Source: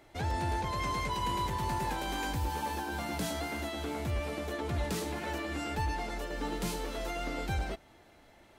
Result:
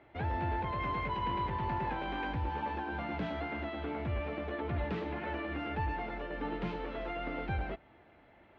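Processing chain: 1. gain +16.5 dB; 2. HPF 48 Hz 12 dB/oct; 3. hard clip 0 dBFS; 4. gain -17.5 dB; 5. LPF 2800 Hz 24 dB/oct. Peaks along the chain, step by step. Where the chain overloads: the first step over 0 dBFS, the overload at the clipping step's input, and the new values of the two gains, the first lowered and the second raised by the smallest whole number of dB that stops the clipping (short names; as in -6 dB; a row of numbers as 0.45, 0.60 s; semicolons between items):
-7.0, -5.5, -5.5, -23.0, -23.5 dBFS; no overload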